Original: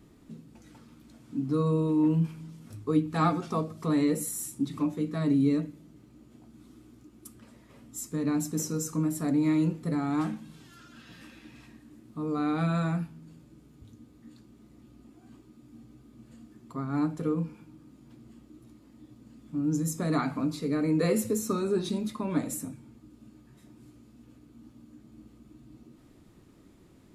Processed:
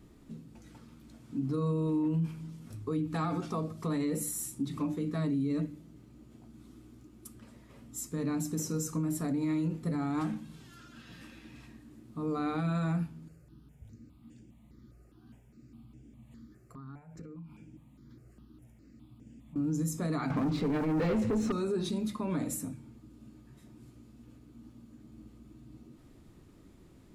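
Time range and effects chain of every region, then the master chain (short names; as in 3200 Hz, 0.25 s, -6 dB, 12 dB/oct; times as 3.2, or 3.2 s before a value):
13.28–19.56 compressor 16:1, threshold -40 dBFS + step phaser 4.9 Hz 940–4100 Hz
20.3–21.52 LPF 2800 Hz + sample leveller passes 3
whole clip: low shelf 120 Hz +7 dB; notches 50/100/150/200/250/300 Hz; limiter -23 dBFS; gain -1.5 dB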